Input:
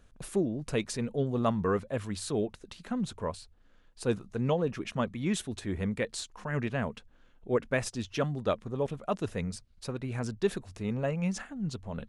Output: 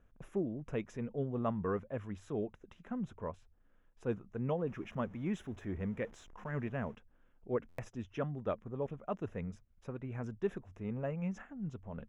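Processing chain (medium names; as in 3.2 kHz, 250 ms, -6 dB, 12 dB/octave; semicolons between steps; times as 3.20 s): 4.67–6.95 s: jump at every zero crossing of -45 dBFS; boxcar filter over 10 samples; buffer glitch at 7.68 s, samples 512, times 8; trim -6.5 dB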